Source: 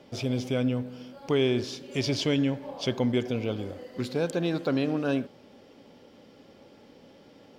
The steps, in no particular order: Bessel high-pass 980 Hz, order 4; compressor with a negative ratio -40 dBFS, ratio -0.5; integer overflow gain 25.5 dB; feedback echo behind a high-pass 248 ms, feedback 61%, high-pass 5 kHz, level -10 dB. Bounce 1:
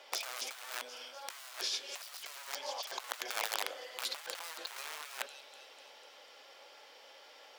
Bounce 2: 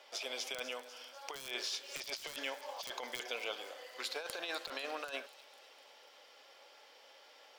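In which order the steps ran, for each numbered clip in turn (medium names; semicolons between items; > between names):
feedback echo behind a high-pass > integer overflow > Bessel high-pass > compressor with a negative ratio; Bessel high-pass > integer overflow > compressor with a negative ratio > feedback echo behind a high-pass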